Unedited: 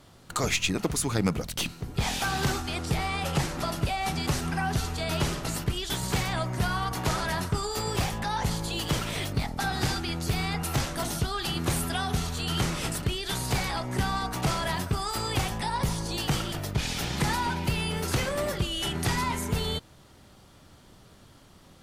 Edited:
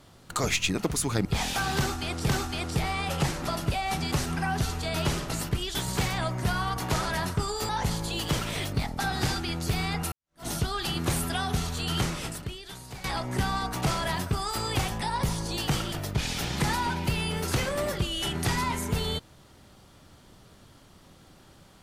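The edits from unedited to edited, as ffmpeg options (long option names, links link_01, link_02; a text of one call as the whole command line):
ffmpeg -i in.wav -filter_complex "[0:a]asplit=6[link_01][link_02][link_03][link_04][link_05][link_06];[link_01]atrim=end=1.252[link_07];[link_02]atrim=start=1.908:end=2.952[link_08];[link_03]atrim=start=2.438:end=7.842[link_09];[link_04]atrim=start=8.288:end=10.72,asetpts=PTS-STARTPTS,afade=type=out:start_time=2.428:duration=0.004:curve=hsin[link_10];[link_05]atrim=start=10.72:end=13.64,asetpts=PTS-STARTPTS,afade=type=in:duration=0.35:curve=exp,afade=type=out:start_time=1.87:duration=1.05:curve=qua:silence=0.188365[link_11];[link_06]atrim=start=13.64,asetpts=PTS-STARTPTS,afade=type=in:duration=0.004:curve=hsin:silence=0.188365[link_12];[link_07][link_08]acrossfade=duration=0.004:curve1=hsin:curve2=hsin[link_13];[link_13][link_09]acrossfade=duration=0.004:curve1=hsin:curve2=hsin[link_14];[link_10][link_11][link_12]concat=n=3:v=0:a=1[link_15];[link_14][link_15]acrossfade=duration=0.004:curve1=hsin:curve2=hsin" out.wav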